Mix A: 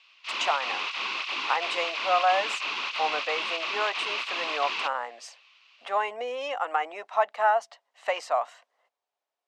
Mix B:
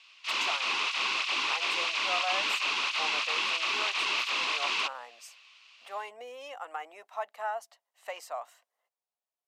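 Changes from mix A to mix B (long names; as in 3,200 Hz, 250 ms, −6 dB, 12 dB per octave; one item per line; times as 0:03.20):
speech −12.0 dB
master: remove high-frequency loss of the air 100 metres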